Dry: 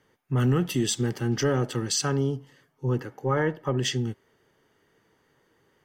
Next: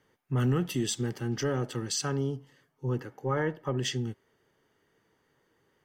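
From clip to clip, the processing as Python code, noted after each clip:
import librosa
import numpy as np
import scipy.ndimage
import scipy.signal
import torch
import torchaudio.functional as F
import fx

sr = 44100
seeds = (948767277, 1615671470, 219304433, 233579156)

y = fx.rider(x, sr, range_db=10, speed_s=2.0)
y = y * librosa.db_to_amplitude(-4.5)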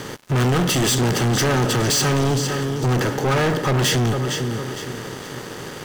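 y = fx.bin_compress(x, sr, power=0.6)
y = fx.echo_feedback(y, sr, ms=458, feedback_pct=36, wet_db=-13.5)
y = fx.leveller(y, sr, passes=5)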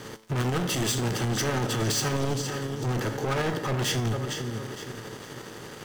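y = fx.tremolo_shape(x, sr, shape='saw_up', hz=12.0, depth_pct=40)
y = fx.comb_fb(y, sr, f0_hz=110.0, decay_s=0.53, harmonics='all', damping=0.0, mix_pct=60)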